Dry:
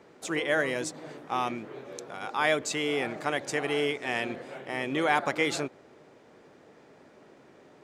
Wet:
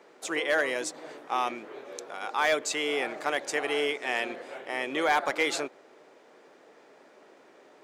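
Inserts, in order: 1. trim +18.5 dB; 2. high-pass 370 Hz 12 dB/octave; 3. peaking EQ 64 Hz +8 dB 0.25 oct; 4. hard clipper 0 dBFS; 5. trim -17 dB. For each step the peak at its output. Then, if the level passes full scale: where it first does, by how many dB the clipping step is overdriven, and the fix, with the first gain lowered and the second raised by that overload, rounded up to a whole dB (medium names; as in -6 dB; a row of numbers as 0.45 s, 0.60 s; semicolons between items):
+8.5 dBFS, +6.0 dBFS, +6.0 dBFS, 0.0 dBFS, -17.0 dBFS; step 1, 6.0 dB; step 1 +12.5 dB, step 5 -11 dB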